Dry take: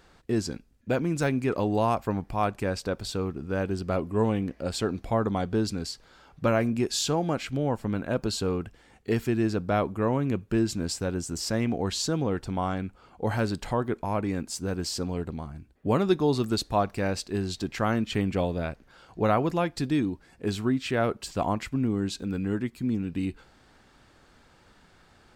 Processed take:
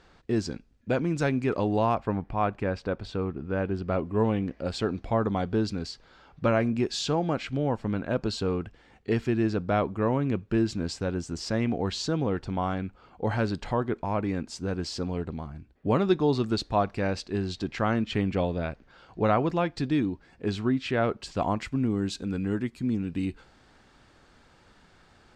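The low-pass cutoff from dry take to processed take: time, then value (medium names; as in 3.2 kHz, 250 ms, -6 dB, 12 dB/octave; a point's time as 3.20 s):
1.61 s 5.9 kHz
2.16 s 2.8 kHz
3.72 s 2.8 kHz
4.54 s 4.9 kHz
21.07 s 4.9 kHz
21.91 s 8.7 kHz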